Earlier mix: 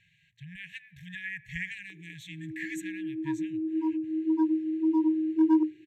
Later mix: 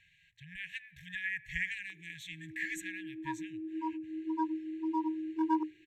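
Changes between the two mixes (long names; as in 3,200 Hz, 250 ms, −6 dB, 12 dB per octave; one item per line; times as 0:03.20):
speech: add low-shelf EQ 150 Hz +6.5 dB
master: add octave-band graphic EQ 125/250/500/1,000 Hz −10/−11/−4/+6 dB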